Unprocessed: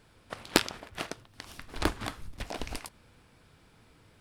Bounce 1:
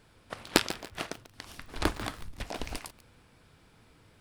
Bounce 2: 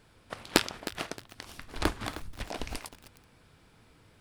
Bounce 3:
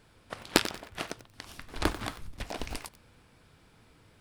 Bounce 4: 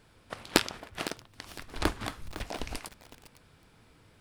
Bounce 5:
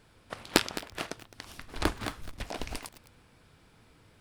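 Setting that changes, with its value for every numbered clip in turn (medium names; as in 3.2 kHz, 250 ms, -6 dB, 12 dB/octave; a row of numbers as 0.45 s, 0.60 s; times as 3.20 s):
bit-crushed delay, time: 143 ms, 311 ms, 92 ms, 507 ms, 212 ms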